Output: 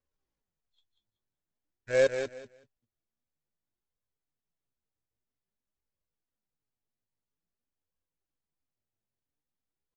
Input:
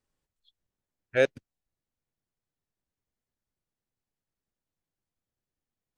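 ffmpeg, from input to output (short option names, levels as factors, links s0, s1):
-af "highshelf=f=2600:g=-8,aresample=16000,acrusher=bits=3:mode=log:mix=0:aa=0.000001,aresample=44100,atempo=0.6,aecho=1:1:189|378|567:0.473|0.0946|0.0189,flanger=delay=1.8:depth=7.2:regen=48:speed=0.5:shape=sinusoidal"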